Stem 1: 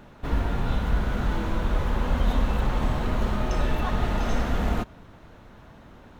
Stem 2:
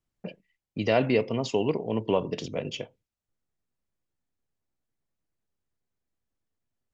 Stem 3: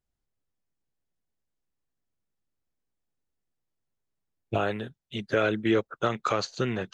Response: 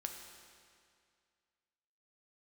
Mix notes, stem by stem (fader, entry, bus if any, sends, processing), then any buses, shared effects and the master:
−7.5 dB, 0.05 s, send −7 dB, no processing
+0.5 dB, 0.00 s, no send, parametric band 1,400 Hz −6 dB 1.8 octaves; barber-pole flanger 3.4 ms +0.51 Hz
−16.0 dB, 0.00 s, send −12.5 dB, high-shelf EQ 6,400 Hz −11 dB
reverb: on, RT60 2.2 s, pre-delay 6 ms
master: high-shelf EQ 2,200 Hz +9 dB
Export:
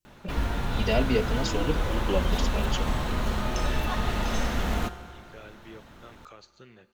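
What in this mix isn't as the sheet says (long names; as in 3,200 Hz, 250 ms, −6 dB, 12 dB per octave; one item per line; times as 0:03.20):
stem 3 −16.0 dB → −26.5 dB
reverb return +7.0 dB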